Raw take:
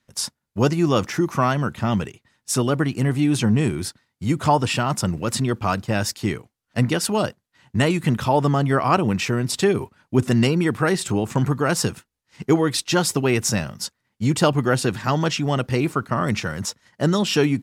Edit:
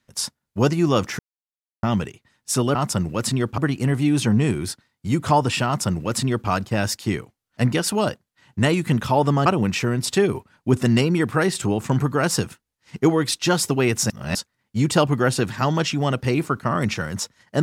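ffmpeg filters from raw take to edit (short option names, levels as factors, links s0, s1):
-filter_complex "[0:a]asplit=8[s0][s1][s2][s3][s4][s5][s6][s7];[s0]atrim=end=1.19,asetpts=PTS-STARTPTS,afade=t=out:st=1.186:d=0.004:c=hsin[s8];[s1]atrim=start=1.19:end=1.83,asetpts=PTS-STARTPTS,volume=0[s9];[s2]atrim=start=1.83:end=2.752,asetpts=PTS-STARTPTS,afade=t=in:d=0.004:c=hsin[s10];[s3]atrim=start=4.828:end=5.662[s11];[s4]atrim=start=2.748:end=8.632[s12];[s5]atrim=start=8.918:end=13.562[s13];[s6]atrim=start=13.558:end=13.812,asetpts=PTS-STARTPTS,areverse[s14];[s7]atrim=start=13.808[s15];[s8][s9][s10]concat=n=3:v=0:a=1[s16];[s16][s11]acrossfade=d=0.004:c1=hsin:c2=hsin[s17];[s17][s12]acrossfade=d=0.004:c1=hsin:c2=hsin[s18];[s18][s13]acrossfade=d=0.004:c1=hsin:c2=hsin[s19];[s19][s14]acrossfade=d=0.004:c1=hsin:c2=hsin[s20];[s20][s15]acrossfade=d=0.004:c1=hsin:c2=hsin"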